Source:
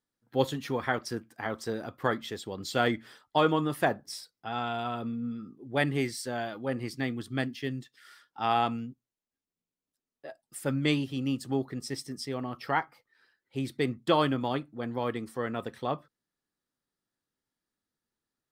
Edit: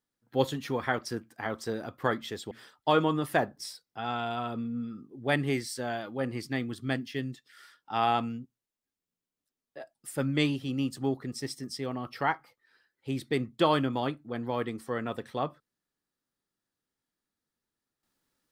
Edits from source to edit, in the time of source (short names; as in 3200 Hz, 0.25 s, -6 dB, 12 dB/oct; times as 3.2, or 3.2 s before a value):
2.51–2.99 cut